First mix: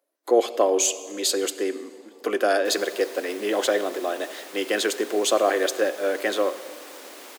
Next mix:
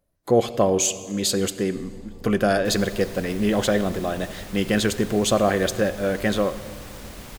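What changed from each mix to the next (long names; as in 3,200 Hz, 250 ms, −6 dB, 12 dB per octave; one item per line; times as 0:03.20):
master: remove Butterworth high-pass 290 Hz 48 dB per octave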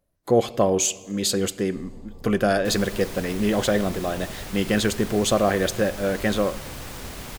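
speech: send −7.5 dB
second sound +4.0 dB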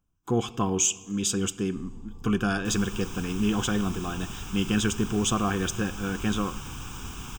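master: add phaser with its sweep stopped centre 2,900 Hz, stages 8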